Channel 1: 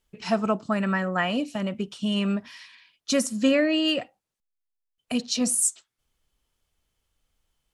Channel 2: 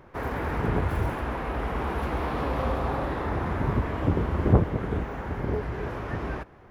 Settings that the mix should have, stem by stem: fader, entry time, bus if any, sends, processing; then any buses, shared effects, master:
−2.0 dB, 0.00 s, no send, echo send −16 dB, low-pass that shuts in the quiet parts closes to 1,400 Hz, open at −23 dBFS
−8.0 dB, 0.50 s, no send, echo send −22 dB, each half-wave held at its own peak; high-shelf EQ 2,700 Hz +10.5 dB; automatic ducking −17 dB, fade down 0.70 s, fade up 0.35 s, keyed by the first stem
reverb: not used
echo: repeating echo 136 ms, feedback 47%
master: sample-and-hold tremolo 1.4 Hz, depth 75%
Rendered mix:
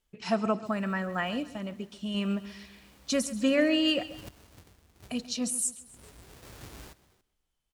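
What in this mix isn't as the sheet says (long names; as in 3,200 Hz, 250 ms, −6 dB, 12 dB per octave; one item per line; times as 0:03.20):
stem 1: missing low-pass that shuts in the quiet parts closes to 1,400 Hz, open at −23 dBFS
stem 2 −8.0 dB → −18.5 dB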